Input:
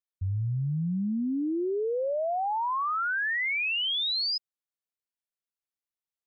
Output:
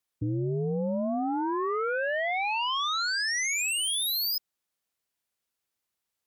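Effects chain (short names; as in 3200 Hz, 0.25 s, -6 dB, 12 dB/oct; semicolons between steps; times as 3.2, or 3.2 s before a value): sine folder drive 6 dB, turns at -25 dBFS; frequency shift +22 Hz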